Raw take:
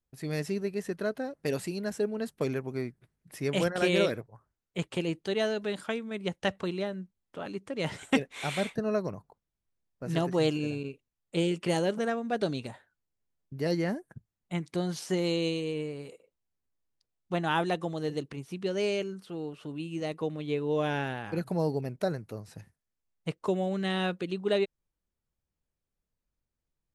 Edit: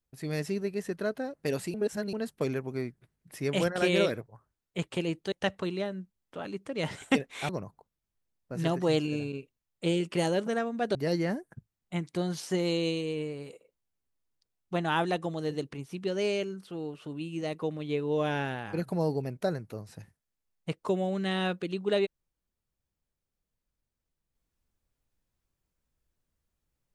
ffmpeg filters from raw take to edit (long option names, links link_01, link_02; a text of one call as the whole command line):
ffmpeg -i in.wav -filter_complex "[0:a]asplit=6[link_01][link_02][link_03][link_04][link_05][link_06];[link_01]atrim=end=1.742[link_07];[link_02]atrim=start=1.738:end=2.132,asetpts=PTS-STARTPTS,areverse[link_08];[link_03]atrim=start=2.128:end=5.322[link_09];[link_04]atrim=start=6.328:end=8.502[link_10];[link_05]atrim=start=8.998:end=12.462[link_11];[link_06]atrim=start=13.538[link_12];[link_07][link_08]acrossfade=duration=0.004:curve1=hsin:curve2=hsin[link_13];[link_13][link_09]acrossfade=duration=0.004:curve1=hsin:curve2=hsin[link_14];[link_14][link_10]acrossfade=duration=0.004:curve1=hsin:curve2=hsin[link_15];[link_15][link_11]acrossfade=duration=0.004:curve1=hsin:curve2=hsin[link_16];[link_16][link_12]acrossfade=duration=0.004:curve1=hsin:curve2=hsin" out.wav